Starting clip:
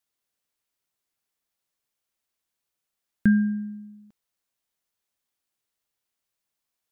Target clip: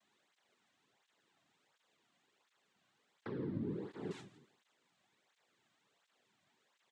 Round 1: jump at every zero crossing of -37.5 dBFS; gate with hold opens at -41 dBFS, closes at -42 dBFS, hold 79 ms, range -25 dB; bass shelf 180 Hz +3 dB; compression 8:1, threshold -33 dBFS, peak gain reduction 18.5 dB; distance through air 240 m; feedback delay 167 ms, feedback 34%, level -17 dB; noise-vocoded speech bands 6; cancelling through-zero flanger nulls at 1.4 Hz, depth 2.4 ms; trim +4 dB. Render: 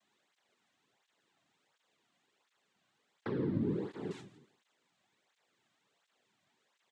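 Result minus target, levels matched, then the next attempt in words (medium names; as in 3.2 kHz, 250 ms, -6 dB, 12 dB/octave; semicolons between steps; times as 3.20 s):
compression: peak gain reduction -6.5 dB
jump at every zero crossing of -37.5 dBFS; gate with hold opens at -41 dBFS, closes at -42 dBFS, hold 79 ms, range -25 dB; bass shelf 180 Hz +3 dB; compression 8:1, threshold -40.5 dBFS, peak gain reduction 25 dB; distance through air 240 m; feedback delay 167 ms, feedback 34%, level -17 dB; noise-vocoded speech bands 6; cancelling through-zero flanger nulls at 1.4 Hz, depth 2.4 ms; trim +4 dB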